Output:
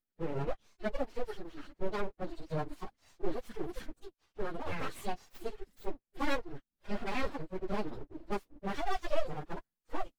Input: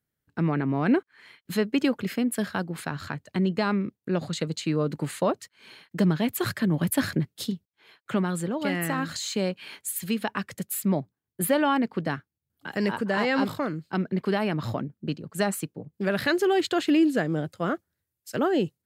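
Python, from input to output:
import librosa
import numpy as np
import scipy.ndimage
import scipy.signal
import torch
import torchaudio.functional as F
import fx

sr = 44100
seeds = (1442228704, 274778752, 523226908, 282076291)

y = fx.hpss_only(x, sr, part='harmonic')
y = np.abs(y)
y = fx.stretch_vocoder_free(y, sr, factor=0.54)
y = y * 10.0 ** (-2.0 / 20.0)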